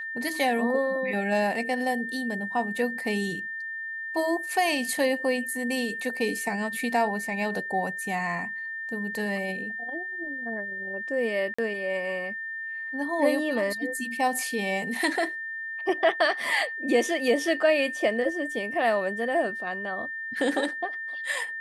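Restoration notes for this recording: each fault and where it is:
whistle 1,800 Hz −32 dBFS
0:11.54–0:11.59: drop-out 45 ms

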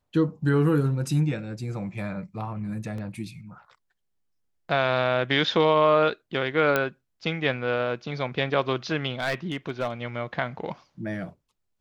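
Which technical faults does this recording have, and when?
0:02.98: drop-out 2.9 ms
0:06.76: click −9 dBFS
0:09.20–0:09.91: clipping −21 dBFS

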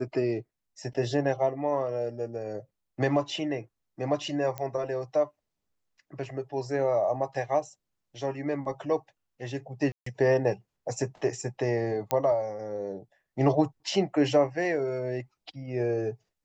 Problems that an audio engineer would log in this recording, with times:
0:04.58: click −19 dBFS
0:09.92–0:10.06: drop-out 144 ms
0:12.11: click −12 dBFS

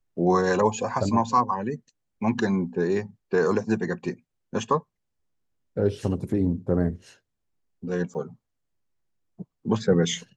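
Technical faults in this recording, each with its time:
0:08.14–0:08.15: drop-out 8.9 ms

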